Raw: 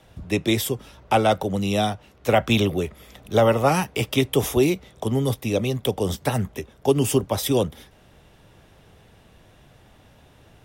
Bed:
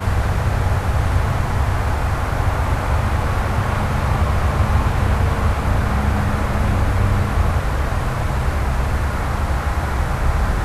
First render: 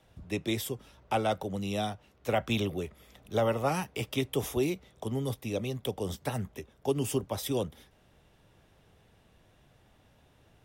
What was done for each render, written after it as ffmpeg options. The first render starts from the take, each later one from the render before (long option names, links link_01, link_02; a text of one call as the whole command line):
ffmpeg -i in.wav -af "volume=-10dB" out.wav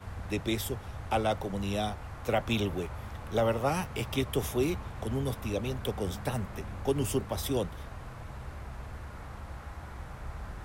ffmpeg -i in.wav -i bed.wav -filter_complex "[1:a]volume=-22.5dB[link_01];[0:a][link_01]amix=inputs=2:normalize=0" out.wav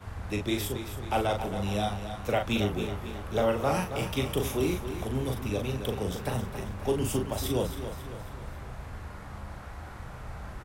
ffmpeg -i in.wav -filter_complex "[0:a]asplit=2[link_01][link_02];[link_02]adelay=39,volume=-5dB[link_03];[link_01][link_03]amix=inputs=2:normalize=0,asplit=2[link_04][link_05];[link_05]aecho=0:1:272|544|816|1088|1360:0.316|0.155|0.0759|0.0372|0.0182[link_06];[link_04][link_06]amix=inputs=2:normalize=0" out.wav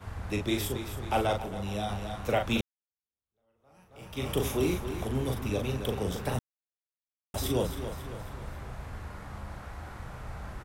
ffmpeg -i in.wav -filter_complex "[0:a]asplit=6[link_01][link_02][link_03][link_04][link_05][link_06];[link_01]atrim=end=1.382[link_07];[link_02]atrim=start=1.378:end=1.892,asetpts=PTS-STARTPTS,volume=-4dB[link_08];[link_03]atrim=start=1.888:end=2.61,asetpts=PTS-STARTPTS,afade=type=out:start_time=0.718:duration=0.004:curve=hsin[link_09];[link_04]atrim=start=2.61:end=6.39,asetpts=PTS-STARTPTS,afade=type=in:duration=1.68:curve=exp,afade=type=out:start_time=3.776:duration=0.004:curve=hsin[link_10];[link_05]atrim=start=6.39:end=7.34,asetpts=PTS-STARTPTS,volume=0[link_11];[link_06]atrim=start=7.34,asetpts=PTS-STARTPTS,afade=type=in:duration=0.004:curve=hsin[link_12];[link_07][link_08]acrossfade=duration=0.004:curve1=hsin:curve2=hsin[link_13];[link_09][link_10][link_11][link_12]concat=n=4:v=0:a=1[link_14];[link_13][link_14]acrossfade=duration=0.004:curve1=hsin:curve2=hsin" out.wav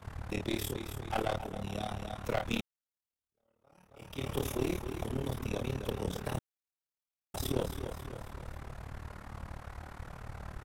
ffmpeg -i in.wav -af "aeval=exprs='clip(val(0),-1,0.0299)':channel_layout=same,tremolo=f=37:d=0.889" out.wav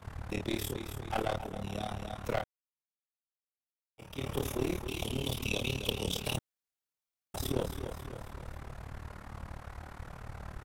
ffmpeg -i in.wav -filter_complex "[0:a]asettb=1/sr,asplit=3[link_01][link_02][link_03];[link_01]atrim=end=4.884[link_04];[link_02]atrim=start=4.88:end=6.37,asetpts=PTS-STARTPTS,afade=type=in:duration=0.004:curve=qsin,afade=type=out:start_time=1.486:duration=0.004:curve=qsin,highshelf=frequency=2200:width_type=q:width=3:gain=8[link_05];[link_03]atrim=start=6.366[link_06];[link_04][link_05]acrossfade=duration=0.004:curve1=hsin:curve2=qsin[link_07];[link_07][link_06]acrossfade=duration=0.004:curve1=qsin:curve2=hsin,asplit=3[link_08][link_09][link_10];[link_08]atrim=end=2.44,asetpts=PTS-STARTPTS,afade=type=out:start_time=2.436:duration=0.004:curve=hsin[link_11];[link_09]atrim=start=2.44:end=3.98,asetpts=PTS-STARTPTS,volume=0[link_12];[link_10]atrim=start=3.98,asetpts=PTS-STARTPTS,afade=type=in:duration=0.004:curve=hsin[link_13];[link_11][link_12][link_13]concat=n=3:v=0:a=1" out.wav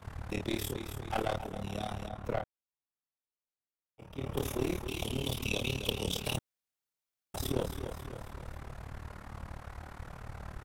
ffmpeg -i in.wav -filter_complex "[0:a]asettb=1/sr,asplit=3[link_01][link_02][link_03];[link_01]atrim=end=2.084[link_04];[link_02]atrim=start=2.08:end=4.37,asetpts=PTS-STARTPTS,afade=type=in:duration=0.004:curve=qsin,afade=type=out:start_time=2.286:duration=0.004:curve=qsin,highshelf=frequency=2100:gain=-11[link_05];[link_03]atrim=start=4.366[link_06];[link_04][link_05]acrossfade=duration=0.004:curve1=hsin:curve2=qsin[link_07];[link_07][link_06]acrossfade=duration=0.004:curve1=qsin:curve2=hsin" out.wav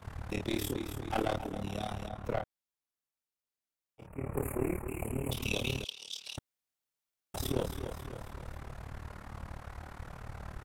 ffmpeg -i in.wav -filter_complex "[0:a]asettb=1/sr,asplit=3[link_01][link_02][link_03];[link_01]atrim=end=0.564[link_04];[link_02]atrim=start=0.56:end=1.7,asetpts=PTS-STARTPTS,afade=type=in:duration=0.004:curve=qsin,afade=type=out:start_time=1.136:duration=0.004:curve=qsin,equalizer=frequency=290:width=3.2:gain=8.5[link_05];[link_03]atrim=start=1.696[link_06];[link_04][link_05]acrossfade=duration=0.004:curve1=hsin:curve2=qsin[link_07];[link_07][link_06]acrossfade=duration=0.004:curve1=qsin:curve2=hsin,asettb=1/sr,asplit=3[link_08][link_09][link_10];[link_08]atrim=end=4.074[link_11];[link_09]atrim=start=4.07:end=5.31,asetpts=PTS-STARTPTS,afade=type=in:duration=0.004:curve=qsin,afade=type=out:start_time=1.236:duration=0.004:curve=qsin,asuperstop=centerf=4400:order=12:qfactor=0.88[link_12];[link_10]atrim=start=5.306[link_13];[link_11][link_12]acrossfade=duration=0.004:curve1=hsin:curve2=qsin[link_14];[link_14][link_13]acrossfade=duration=0.004:curve1=qsin:curve2=hsin,asettb=1/sr,asplit=3[link_15][link_16][link_17];[link_15]atrim=end=5.844[link_18];[link_16]atrim=start=5.84:end=6.38,asetpts=PTS-STARTPTS,afade=type=in:duration=0.004:curve=qsin,afade=type=out:start_time=0.536:duration=0.004:curve=qsin,bandpass=frequency=4800:width_type=q:width=2[link_19];[link_17]atrim=start=6.376[link_20];[link_18][link_19]acrossfade=duration=0.004:curve1=hsin:curve2=qsin[link_21];[link_21][link_20]acrossfade=duration=0.004:curve1=qsin:curve2=hsin" out.wav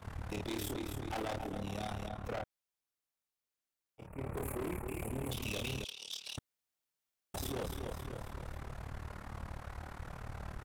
ffmpeg -i in.wav -af "volume=35dB,asoftclip=hard,volume=-35dB" out.wav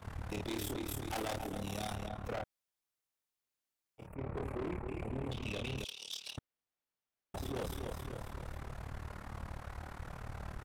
ffmpeg -i in.wav -filter_complex "[0:a]asettb=1/sr,asplit=3[link_01][link_02][link_03];[link_01]atrim=end=0.884[link_04];[link_02]atrim=start=0.88:end=1.96,asetpts=PTS-STARTPTS,afade=type=in:duration=0.004:curve=qsin,afade=type=out:start_time=1.076:duration=0.004:curve=qsin,aemphasis=mode=production:type=cd[link_05];[link_03]atrim=start=1.956[link_06];[link_04][link_05]acrossfade=duration=0.004:curve1=hsin:curve2=qsin[link_07];[link_07][link_06]acrossfade=duration=0.004:curve1=qsin:curve2=hsin,asplit=3[link_08][link_09][link_10];[link_08]afade=type=out:start_time=4.14:duration=0.02[link_11];[link_09]adynamicsmooth=sensitivity=7:basefreq=2600,afade=type=in:start_time=4.14:duration=0.02,afade=type=out:start_time=5.77:duration=0.02[link_12];[link_10]afade=type=in:start_time=5.77:duration=0.02[link_13];[link_11][link_12][link_13]amix=inputs=3:normalize=0,asettb=1/sr,asplit=3[link_14][link_15][link_16];[link_14]atrim=end=6.314[link_17];[link_15]atrim=start=6.31:end=7.55,asetpts=PTS-STARTPTS,afade=type=in:duration=0.004:curve=qsin,afade=type=out:start_time=1.236:duration=0.004:curve=qsin,highshelf=frequency=3600:gain=-11[link_18];[link_16]atrim=start=7.546[link_19];[link_17][link_18]acrossfade=duration=0.004:curve1=hsin:curve2=qsin[link_20];[link_20][link_19]acrossfade=duration=0.004:curve1=qsin:curve2=hsin" out.wav